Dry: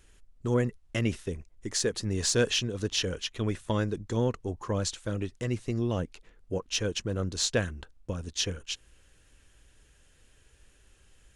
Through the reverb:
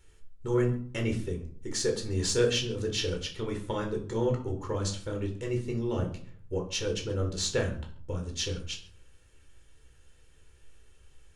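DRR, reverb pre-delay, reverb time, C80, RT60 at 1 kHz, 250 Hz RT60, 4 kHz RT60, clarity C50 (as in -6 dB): 1.5 dB, 13 ms, 0.55 s, 13.5 dB, 0.50 s, 0.65 s, 0.35 s, 10.0 dB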